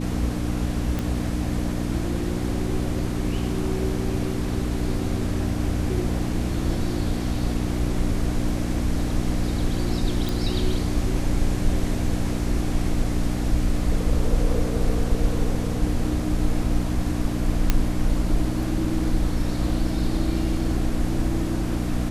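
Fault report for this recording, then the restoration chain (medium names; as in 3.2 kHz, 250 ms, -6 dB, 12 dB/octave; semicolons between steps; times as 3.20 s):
hum 60 Hz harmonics 5 -27 dBFS
0.99 s: pop
10.29 s: pop
17.70 s: pop -4 dBFS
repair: de-click; de-hum 60 Hz, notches 5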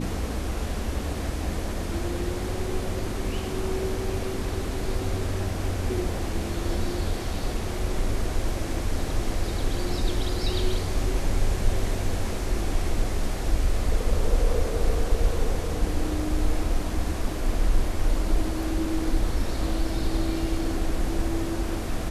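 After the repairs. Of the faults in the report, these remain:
nothing left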